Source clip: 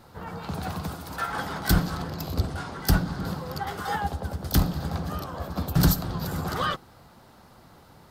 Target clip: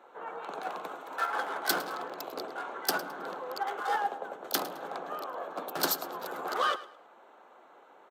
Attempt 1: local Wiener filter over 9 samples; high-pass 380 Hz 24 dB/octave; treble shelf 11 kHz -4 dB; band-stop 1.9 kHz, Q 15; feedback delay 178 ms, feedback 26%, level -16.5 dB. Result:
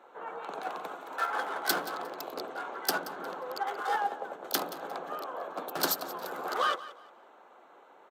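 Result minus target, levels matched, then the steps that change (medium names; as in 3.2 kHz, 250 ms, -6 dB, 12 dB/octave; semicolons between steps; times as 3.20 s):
echo 71 ms late
change: feedback delay 107 ms, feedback 26%, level -16.5 dB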